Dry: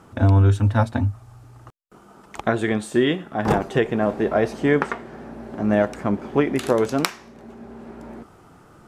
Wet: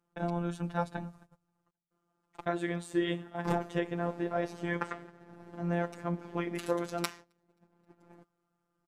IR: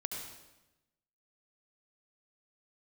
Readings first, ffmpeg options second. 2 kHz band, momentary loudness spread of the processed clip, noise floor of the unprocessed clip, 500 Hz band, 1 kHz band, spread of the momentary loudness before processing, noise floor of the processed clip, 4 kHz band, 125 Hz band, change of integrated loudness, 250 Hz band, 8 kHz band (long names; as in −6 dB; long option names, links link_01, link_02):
−12.0 dB, 10 LU, −50 dBFS, −13.5 dB, −10.5 dB, 21 LU, −81 dBFS, −11.5 dB, −17.0 dB, −13.5 dB, −12.5 dB, −11.5 dB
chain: -af "aecho=1:1:265|530|795:0.0631|0.0271|0.0117,agate=range=-20dB:threshold=-36dB:ratio=16:detection=peak,afftfilt=real='hypot(re,im)*cos(PI*b)':imag='0':win_size=1024:overlap=0.75,volume=-8dB"